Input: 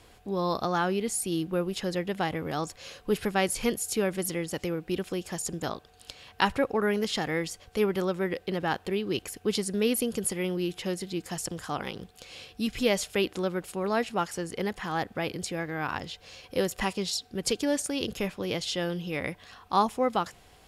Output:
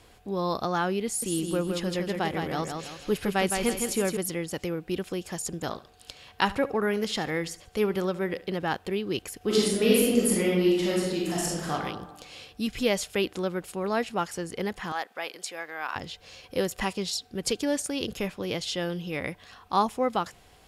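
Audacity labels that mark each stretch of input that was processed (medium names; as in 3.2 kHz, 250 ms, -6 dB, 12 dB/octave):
1.060000	4.170000	feedback delay 163 ms, feedback 38%, level -5 dB
5.610000	8.470000	feedback delay 71 ms, feedback 37%, level -18 dB
9.370000	11.720000	reverb throw, RT60 1.2 s, DRR -5 dB
14.920000	15.960000	high-pass 650 Hz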